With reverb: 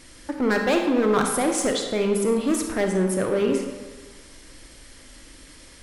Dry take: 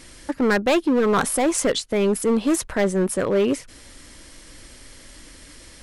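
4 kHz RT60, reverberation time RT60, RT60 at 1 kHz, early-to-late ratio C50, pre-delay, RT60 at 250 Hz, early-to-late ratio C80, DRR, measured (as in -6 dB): 0.90 s, 1.3 s, 1.4 s, 4.5 dB, 29 ms, 1.2 s, 6.5 dB, 3.0 dB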